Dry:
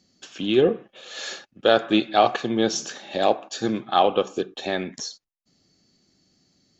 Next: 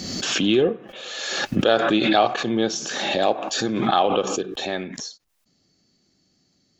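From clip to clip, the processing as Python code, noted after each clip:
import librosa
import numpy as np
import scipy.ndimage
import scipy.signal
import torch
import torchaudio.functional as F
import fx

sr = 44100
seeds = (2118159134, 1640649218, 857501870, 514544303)

y = fx.pre_swell(x, sr, db_per_s=31.0)
y = y * 10.0 ** (-1.5 / 20.0)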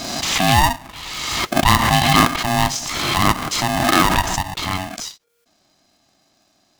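y = x * np.sign(np.sin(2.0 * np.pi * 470.0 * np.arange(len(x)) / sr))
y = y * 10.0 ** (4.0 / 20.0)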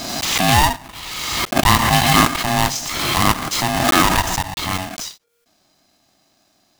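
y = fx.block_float(x, sr, bits=3)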